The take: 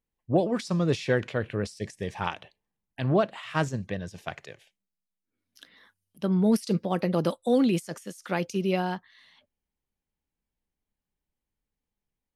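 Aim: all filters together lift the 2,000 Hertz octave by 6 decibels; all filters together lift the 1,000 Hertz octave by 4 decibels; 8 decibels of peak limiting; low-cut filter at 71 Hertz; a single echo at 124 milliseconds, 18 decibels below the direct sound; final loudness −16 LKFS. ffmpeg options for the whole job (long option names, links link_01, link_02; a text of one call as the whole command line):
ffmpeg -i in.wav -af "highpass=71,equalizer=frequency=1000:width_type=o:gain=4,equalizer=frequency=2000:width_type=o:gain=6.5,alimiter=limit=-14.5dB:level=0:latency=1,aecho=1:1:124:0.126,volume=12dB" out.wav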